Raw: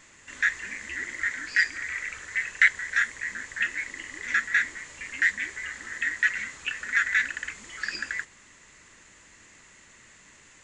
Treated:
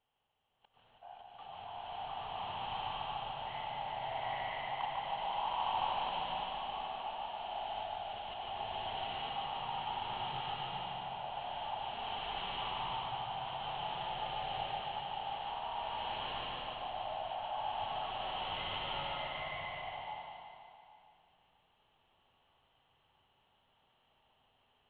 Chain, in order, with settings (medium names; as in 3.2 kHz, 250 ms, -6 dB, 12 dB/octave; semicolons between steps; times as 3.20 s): gate with hold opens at -41 dBFS; slow attack 627 ms; dynamic bell 7.3 kHz, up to +4 dB, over -58 dBFS, Q 1.1; level held to a coarse grid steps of 17 dB; on a send: flutter echo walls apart 10.8 m, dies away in 0.84 s; on the sum: speed mistake 78 rpm record played at 33 rpm; swelling reverb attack 1000 ms, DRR -10 dB